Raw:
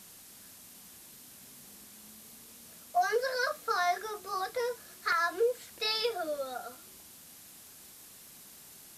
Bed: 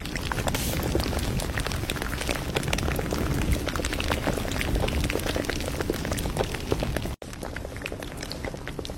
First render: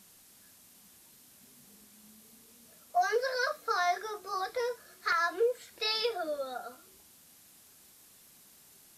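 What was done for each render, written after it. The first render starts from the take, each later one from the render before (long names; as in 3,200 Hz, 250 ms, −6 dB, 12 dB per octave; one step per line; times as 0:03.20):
noise reduction from a noise print 6 dB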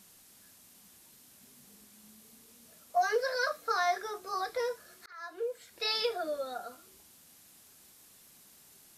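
0:05.06–0:05.93: fade in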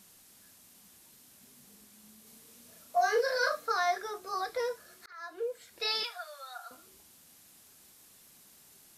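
0:02.23–0:03.66: double-tracking delay 37 ms −2.5 dB
0:06.03–0:06.71: inverse Chebyshev high-pass filter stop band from 260 Hz, stop band 60 dB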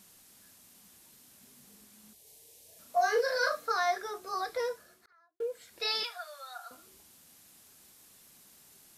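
0:02.13–0:02.79: phaser with its sweep stopped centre 540 Hz, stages 4
0:04.65–0:05.40: fade out and dull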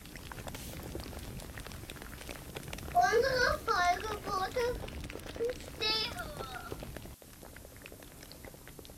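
mix in bed −16.5 dB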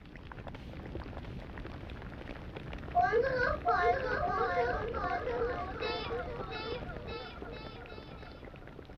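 high-frequency loss of the air 340 metres
bouncing-ball delay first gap 700 ms, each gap 0.8×, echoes 5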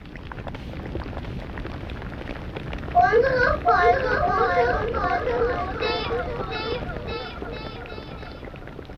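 level +11 dB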